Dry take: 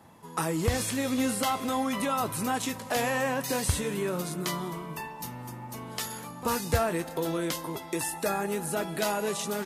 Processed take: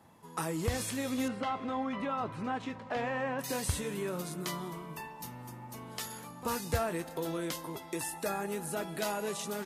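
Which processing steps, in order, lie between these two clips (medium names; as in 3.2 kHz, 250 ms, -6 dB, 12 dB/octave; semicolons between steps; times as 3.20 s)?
1.28–3.39 s: low-pass 2.5 kHz 12 dB/octave; trim -5.5 dB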